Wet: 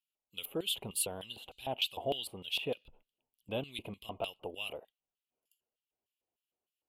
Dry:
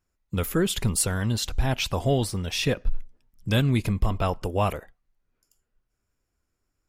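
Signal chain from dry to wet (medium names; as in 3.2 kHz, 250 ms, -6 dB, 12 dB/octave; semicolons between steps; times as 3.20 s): LFO band-pass square 3.3 Hz 790–4600 Hz; FFT filter 460 Hz 0 dB, 1.8 kHz -16 dB, 2.9 kHz +10 dB, 5.5 kHz -20 dB, 12 kHz +13 dB; trim +1.5 dB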